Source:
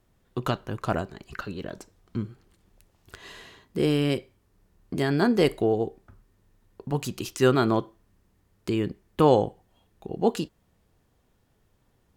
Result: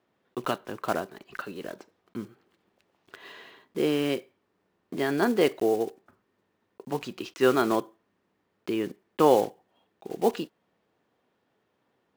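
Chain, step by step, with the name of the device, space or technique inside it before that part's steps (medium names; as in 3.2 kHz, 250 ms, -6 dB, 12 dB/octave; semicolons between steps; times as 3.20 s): early digital voice recorder (band-pass 270–3500 Hz; block-companded coder 5-bit)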